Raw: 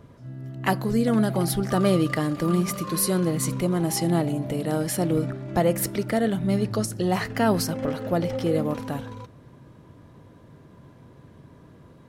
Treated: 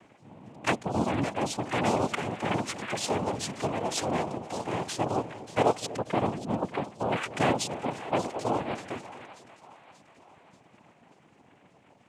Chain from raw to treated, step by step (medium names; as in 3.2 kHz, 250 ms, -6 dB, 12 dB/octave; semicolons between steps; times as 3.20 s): 5.96–7.23 s: low-pass 1.5 kHz 12 dB/octave; reverb removal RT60 2 s; high-pass 240 Hz 12 dB/octave; noise-vocoded speech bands 4; two-band feedback delay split 700 Hz, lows 243 ms, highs 585 ms, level -14.5 dB; trim -1.5 dB